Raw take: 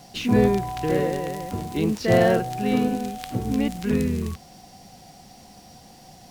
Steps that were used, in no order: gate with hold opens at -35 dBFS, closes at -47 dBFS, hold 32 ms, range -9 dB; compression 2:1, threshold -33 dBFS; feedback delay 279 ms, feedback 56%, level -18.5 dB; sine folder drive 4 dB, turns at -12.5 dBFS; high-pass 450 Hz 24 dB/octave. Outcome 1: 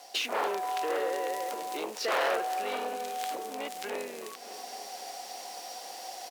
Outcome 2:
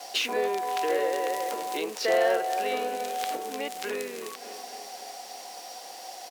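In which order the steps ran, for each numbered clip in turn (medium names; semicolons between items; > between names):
gate with hold > sine folder > feedback delay > compression > high-pass; feedback delay > compression > high-pass > sine folder > gate with hold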